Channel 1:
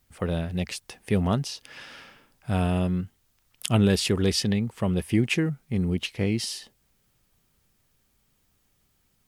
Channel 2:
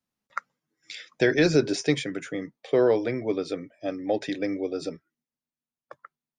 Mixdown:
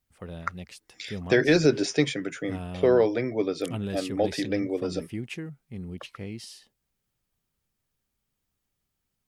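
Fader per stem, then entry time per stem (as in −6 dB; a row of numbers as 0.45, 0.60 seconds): −12.0, +0.5 decibels; 0.00, 0.10 seconds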